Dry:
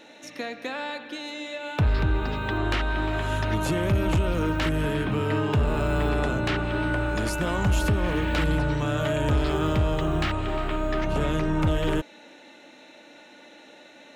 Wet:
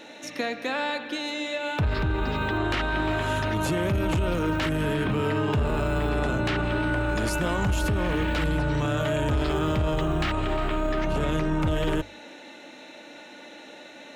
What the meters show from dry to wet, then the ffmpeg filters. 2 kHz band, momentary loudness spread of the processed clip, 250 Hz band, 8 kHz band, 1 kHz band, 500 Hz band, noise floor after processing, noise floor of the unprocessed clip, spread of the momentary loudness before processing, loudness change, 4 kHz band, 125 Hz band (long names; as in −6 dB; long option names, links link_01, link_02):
+1.0 dB, 19 LU, 0.0 dB, +0.5 dB, +0.5 dB, +0.5 dB, −45 dBFS, −50 dBFS, 9 LU, −0.5 dB, +1.0 dB, −1.5 dB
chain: -af "bandreject=frequency=50:width_type=h:width=6,bandreject=frequency=100:width_type=h:width=6,alimiter=limit=-22.5dB:level=0:latency=1:release=26,volume=4.5dB"